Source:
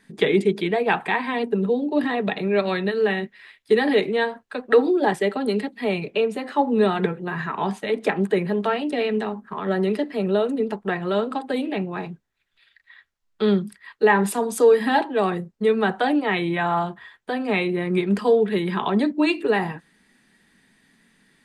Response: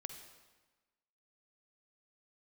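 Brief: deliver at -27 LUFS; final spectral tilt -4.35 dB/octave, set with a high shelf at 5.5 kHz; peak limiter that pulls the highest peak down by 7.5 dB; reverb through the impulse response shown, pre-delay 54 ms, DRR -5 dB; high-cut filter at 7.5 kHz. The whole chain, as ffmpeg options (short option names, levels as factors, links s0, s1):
-filter_complex "[0:a]lowpass=7500,highshelf=f=5500:g=6.5,alimiter=limit=0.237:level=0:latency=1,asplit=2[s0][s1];[1:a]atrim=start_sample=2205,adelay=54[s2];[s1][s2]afir=irnorm=-1:irlink=0,volume=2.66[s3];[s0][s3]amix=inputs=2:normalize=0,volume=0.335"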